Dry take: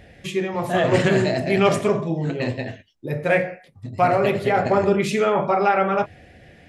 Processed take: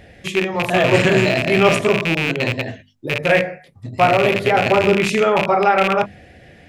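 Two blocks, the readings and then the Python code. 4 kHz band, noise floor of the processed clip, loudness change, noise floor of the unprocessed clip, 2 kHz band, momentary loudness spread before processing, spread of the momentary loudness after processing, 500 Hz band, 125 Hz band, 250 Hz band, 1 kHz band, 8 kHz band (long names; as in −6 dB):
+9.0 dB, −48 dBFS, +4.5 dB, −51 dBFS, +7.5 dB, 12 LU, 11 LU, +3.5 dB, +2.5 dB, +2.5 dB, +3.5 dB, +4.5 dB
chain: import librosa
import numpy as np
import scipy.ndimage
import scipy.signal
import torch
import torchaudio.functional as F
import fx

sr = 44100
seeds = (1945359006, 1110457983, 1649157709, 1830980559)

y = fx.rattle_buzz(x, sr, strikes_db=-27.0, level_db=-12.0)
y = fx.hum_notches(y, sr, base_hz=50, count=5)
y = y * librosa.db_to_amplitude(3.5)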